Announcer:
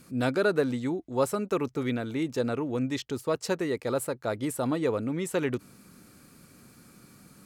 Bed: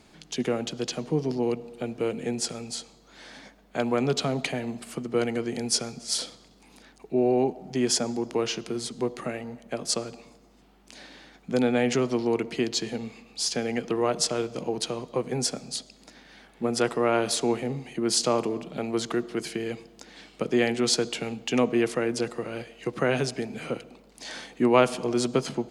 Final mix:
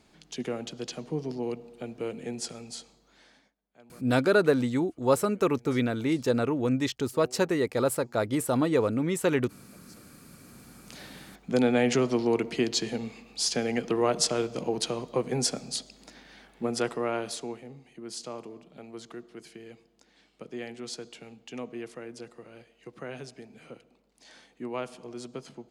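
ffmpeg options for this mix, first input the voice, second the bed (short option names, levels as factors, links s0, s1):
-filter_complex "[0:a]adelay=3900,volume=1.41[s0];[1:a]volume=14.1,afade=t=out:st=2.9:d=0.65:silence=0.0707946,afade=t=in:st=10.25:d=0.48:silence=0.0354813,afade=t=out:st=16.15:d=1.47:silence=0.177828[s1];[s0][s1]amix=inputs=2:normalize=0"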